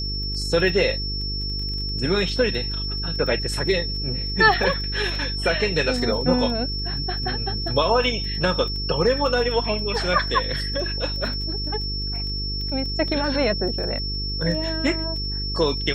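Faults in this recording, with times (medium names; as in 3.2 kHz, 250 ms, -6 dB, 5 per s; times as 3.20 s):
buzz 50 Hz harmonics 9 -29 dBFS
crackle 16 per s -30 dBFS
whine 5.4 kHz -28 dBFS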